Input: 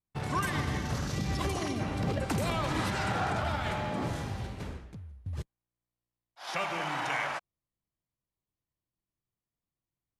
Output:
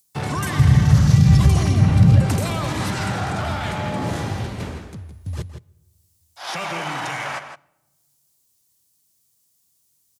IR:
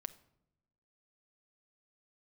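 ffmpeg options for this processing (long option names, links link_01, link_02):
-filter_complex "[0:a]highpass=80,asettb=1/sr,asplit=3[link_01][link_02][link_03];[link_01]atrim=end=0.594[link_04];[link_02]atrim=start=0.59:end=2.21,asetpts=PTS-STARTPTS,afade=type=in:duration=0.004:curve=qsin,afade=type=out:start_time=1.616:duration=0.004:curve=qsin,lowshelf=frequency=210:width_type=q:width=1.5:gain=11[link_05];[link_03]atrim=start=2.206[link_06];[link_04][link_05]acrossfade=duration=0.004:curve1=hsin:curve2=qsin[link_07];[link_07][link_06]acrossfade=duration=0.004:curve1=qsin:curve2=hsin,acrossover=split=190|4900[link_08][link_09][link_10];[link_09]alimiter=level_in=7dB:limit=-24dB:level=0:latency=1:release=11,volume=-7dB[link_11];[link_10]acompressor=mode=upward:threshold=-56dB:ratio=2.5[link_12];[link_08][link_11][link_12]amix=inputs=3:normalize=0,asplit=2[link_13][link_14];[link_14]adelay=163.3,volume=-9dB,highshelf=frequency=4000:gain=-3.67[link_15];[link_13][link_15]amix=inputs=2:normalize=0,asplit=2[link_16][link_17];[1:a]atrim=start_sample=2205,asetrate=25137,aresample=44100[link_18];[link_17][link_18]afir=irnorm=-1:irlink=0,volume=-8dB[link_19];[link_16][link_19]amix=inputs=2:normalize=0,volume=7.5dB"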